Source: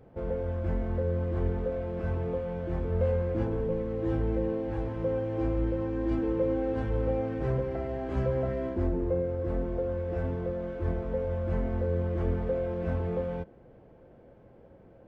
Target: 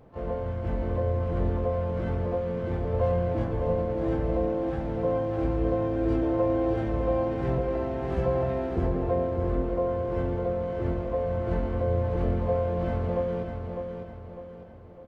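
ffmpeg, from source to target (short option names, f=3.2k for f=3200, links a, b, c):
-filter_complex "[0:a]asplit=3[a][b][c];[b]asetrate=58866,aresample=44100,atempo=0.749154,volume=-8dB[d];[c]asetrate=88200,aresample=44100,atempo=0.5,volume=-14dB[e];[a][d][e]amix=inputs=3:normalize=0,aecho=1:1:603|1206|1809|2412|3015:0.501|0.205|0.0842|0.0345|0.0142"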